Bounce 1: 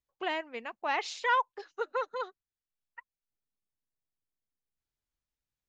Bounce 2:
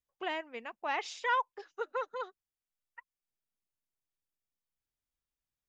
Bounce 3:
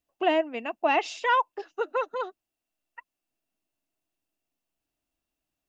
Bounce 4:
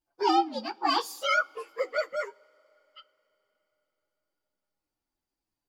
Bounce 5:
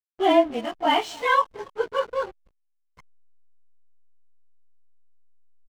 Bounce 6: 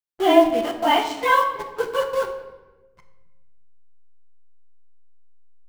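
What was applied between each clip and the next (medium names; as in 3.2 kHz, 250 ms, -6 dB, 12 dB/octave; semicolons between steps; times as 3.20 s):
band-stop 4.2 kHz, Q 11; trim -3 dB
small resonant body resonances 300/650/2700 Hz, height 13 dB, ringing for 25 ms; trim +4.5 dB
frequency axis rescaled in octaves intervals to 123%; on a send at -17.5 dB: reverberation, pre-delay 3 ms; on the sum: trim +2.5 dB
frequency axis rescaled in octaves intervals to 85%; delay 281 ms -23 dB; hysteresis with a dead band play -41 dBFS; trim +7 dB
in parallel at -5 dB: bit crusher 5-bit; on the sum: simulated room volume 690 m³, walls mixed, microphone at 0.81 m; trim -2.5 dB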